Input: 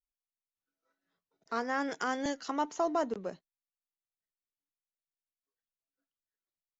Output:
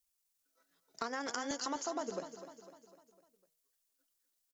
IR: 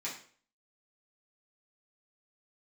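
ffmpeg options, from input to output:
-filter_complex "[0:a]bass=f=250:g=-4,treble=f=4000:g=11,bandreject=f=158.6:t=h:w=4,bandreject=f=317.2:t=h:w=4,bandreject=f=475.8:t=h:w=4,bandreject=f=634.4:t=h:w=4,bandreject=f=793:t=h:w=4,acompressor=threshold=0.00891:ratio=6,atempo=1.5,asplit=2[s0][s1];[s1]aecho=0:1:251|502|753|1004|1255:0.282|0.144|0.0733|0.0374|0.0191[s2];[s0][s2]amix=inputs=2:normalize=0,volume=1.88"

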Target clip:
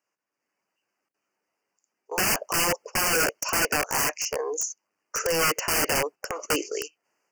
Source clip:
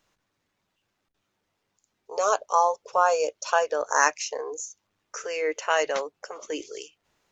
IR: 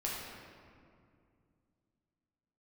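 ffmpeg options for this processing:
-af "agate=range=0.282:threshold=0.00891:ratio=16:detection=peak,highpass=300,dynaudnorm=f=260:g=3:m=2.66,aeval=exprs='(mod(7.5*val(0)+1,2)-1)/7.5':c=same,asuperstop=centerf=3700:order=12:qfactor=2.4"

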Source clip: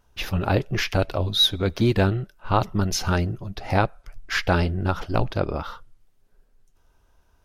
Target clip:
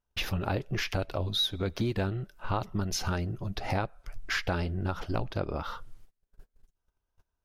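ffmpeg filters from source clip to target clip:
-af "agate=range=0.0355:threshold=0.00224:ratio=16:detection=peak,acompressor=threshold=0.01:ratio=3,volume=2.24"

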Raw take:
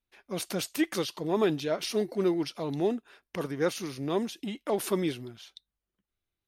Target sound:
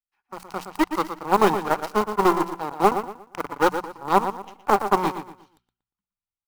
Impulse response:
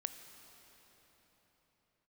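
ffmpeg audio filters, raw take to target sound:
-filter_complex "[0:a]acrossover=split=300|790|4900[s0][s1][s2][s3];[s1]acrusher=bits=5:mix=0:aa=0.5[s4];[s0][s4][s2][s3]amix=inputs=4:normalize=0,aeval=exprs='0.188*(cos(1*acos(clip(val(0)/0.188,-1,1)))-cos(1*PI/2))+0.0531*(cos(2*acos(clip(val(0)/0.188,-1,1)))-cos(2*PI/2))+0.0299*(cos(7*acos(clip(val(0)/0.188,-1,1)))-cos(7*PI/2))':c=same,highshelf=f=3700:g=-5,bandreject=f=3500:w=9.9,asplit=2[s5][s6];[s6]adelay=118,lowpass=f=3500:p=1,volume=0.355,asplit=2[s7][s8];[s8]adelay=118,lowpass=f=3500:p=1,volume=0.32,asplit=2[s9][s10];[s10]adelay=118,lowpass=f=3500:p=1,volume=0.32,asplit=2[s11][s12];[s12]adelay=118,lowpass=f=3500:p=1,volume=0.32[s13];[s5][s7][s9][s11][s13]amix=inputs=5:normalize=0,acrusher=bits=4:mode=log:mix=0:aa=0.000001,superequalizer=9b=3.55:10b=2.51,dynaudnorm=f=160:g=9:m=2.51,bandreject=f=60:t=h:w=6,bandreject=f=120:t=h:w=6,bandreject=f=180:t=h:w=6"

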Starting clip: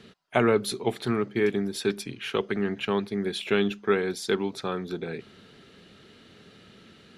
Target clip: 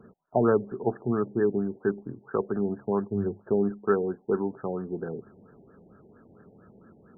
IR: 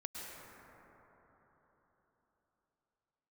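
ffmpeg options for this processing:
-filter_complex "[0:a]asettb=1/sr,asplit=3[s0][s1][s2];[s0]atrim=end=3.104[s3];[s1]atrim=start=3.1:end=3.52,asetpts=PTS-STARTPTS,afade=t=in:d=0.004:c=qsin,afade=t=out:st=0.416:d=0.004:c=qsin,equalizer=f=100:t=o:w=0.33:g=14.5[s4];[s2]atrim=start=3.516[s5];[s3][s4]acrossfade=d=0.004:c1=hsin:c2=qsin[s6];[s6][s5]acrossfade=d=0.004:c1=qsin:c2=hsin,afftfilt=real='re*lt(b*sr/1024,870*pow(1800/870,0.5+0.5*sin(2*PI*4.4*pts/sr)))':imag='im*lt(b*sr/1024,870*pow(1800/870,0.5+0.5*sin(2*PI*4.4*pts/sr)))':win_size=1024:overlap=0.75"

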